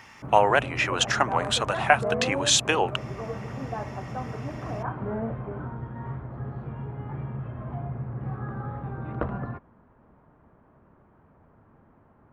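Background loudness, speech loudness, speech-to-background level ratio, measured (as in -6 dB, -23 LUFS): -34.0 LUFS, -23.5 LUFS, 10.5 dB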